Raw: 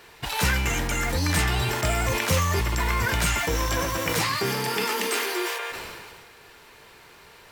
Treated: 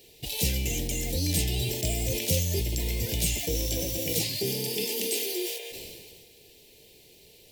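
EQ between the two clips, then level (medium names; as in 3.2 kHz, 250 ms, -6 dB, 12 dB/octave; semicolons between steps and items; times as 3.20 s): Chebyshev band-stop 490–3200 Hz, order 2; treble shelf 11 kHz +11 dB; -2.5 dB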